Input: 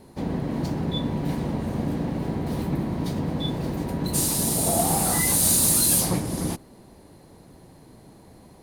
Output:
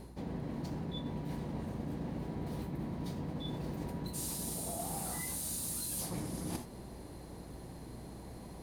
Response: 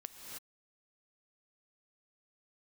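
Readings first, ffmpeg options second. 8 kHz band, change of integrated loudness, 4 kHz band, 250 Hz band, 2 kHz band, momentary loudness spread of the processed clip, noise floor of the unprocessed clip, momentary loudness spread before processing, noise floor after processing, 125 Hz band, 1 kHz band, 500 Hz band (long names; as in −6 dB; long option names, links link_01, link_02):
−17.5 dB, −16.5 dB, −16.0 dB, −13.0 dB, −15.5 dB, 13 LU, −51 dBFS, 12 LU, −49 dBFS, −12.5 dB, −14.5 dB, −13.5 dB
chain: -filter_complex "[1:a]atrim=start_sample=2205,atrim=end_sample=4410[link_01];[0:a][link_01]afir=irnorm=-1:irlink=0,areverse,acompressor=threshold=-42dB:ratio=12,areverse,aeval=exprs='val(0)+0.00126*(sin(2*PI*60*n/s)+sin(2*PI*2*60*n/s)/2+sin(2*PI*3*60*n/s)/3+sin(2*PI*4*60*n/s)/4+sin(2*PI*5*60*n/s)/5)':channel_layout=same,volume=6dB"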